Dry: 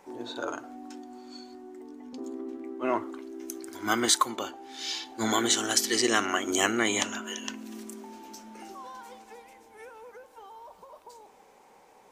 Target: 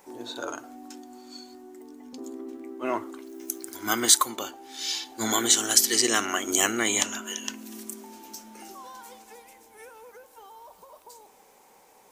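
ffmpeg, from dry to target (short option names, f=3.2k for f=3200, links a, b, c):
-filter_complex "[0:a]asettb=1/sr,asplit=3[a][b][c];[a]atrim=end=3.264[d];[b]atrim=start=3.26:end=3.75,asetpts=PTS-STARTPTS,afade=t=in:d=0.004:c=qsin,afade=t=out:st=0.486:d=0.004:c=qsin,acrusher=bits=9:mode=log:mix=0:aa=0.000001[e];[c]atrim=start=3.746[f];[d][e]acrossfade=d=0.004:c1=hsin:c2=qsin[g];[g][f]acrossfade=d=0.004:c1=qsin:c2=hsin,aemphasis=mode=production:type=50kf,volume=-1dB"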